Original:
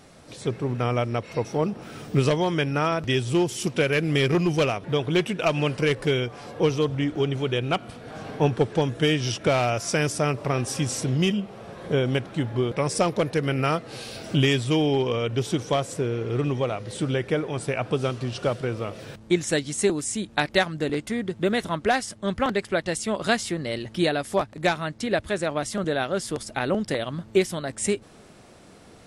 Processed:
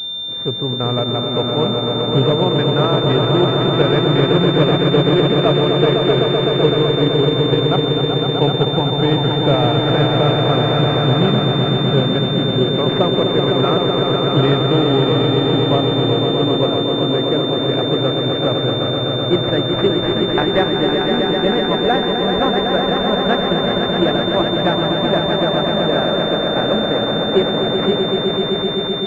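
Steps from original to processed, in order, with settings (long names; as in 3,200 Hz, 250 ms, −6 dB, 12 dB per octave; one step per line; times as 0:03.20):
echo that builds up and dies away 127 ms, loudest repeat 5, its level −6 dB
switching amplifier with a slow clock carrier 3,600 Hz
level +4.5 dB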